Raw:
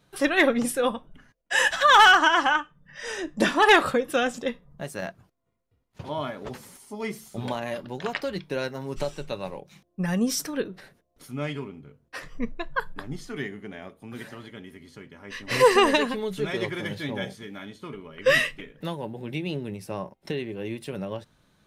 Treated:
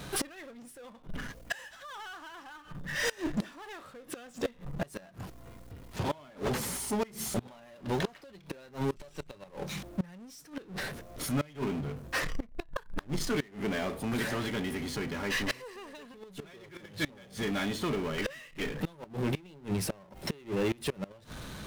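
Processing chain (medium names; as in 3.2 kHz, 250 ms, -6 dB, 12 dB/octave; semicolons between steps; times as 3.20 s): power-law waveshaper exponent 0.5; hum 60 Hz, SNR 27 dB; inverted gate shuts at -15 dBFS, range -25 dB; trim -6.5 dB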